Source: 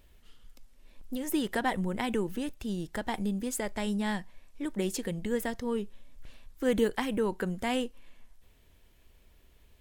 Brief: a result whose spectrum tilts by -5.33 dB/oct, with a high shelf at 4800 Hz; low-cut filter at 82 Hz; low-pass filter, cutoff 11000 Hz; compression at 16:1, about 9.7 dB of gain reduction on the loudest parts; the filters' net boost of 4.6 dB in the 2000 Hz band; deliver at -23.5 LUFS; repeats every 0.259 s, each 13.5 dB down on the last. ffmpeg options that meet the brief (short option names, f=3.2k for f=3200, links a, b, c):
-af "highpass=82,lowpass=11k,equalizer=f=2k:t=o:g=6.5,highshelf=f=4.8k:g=-8,acompressor=threshold=-31dB:ratio=16,aecho=1:1:259|518:0.211|0.0444,volume=13.5dB"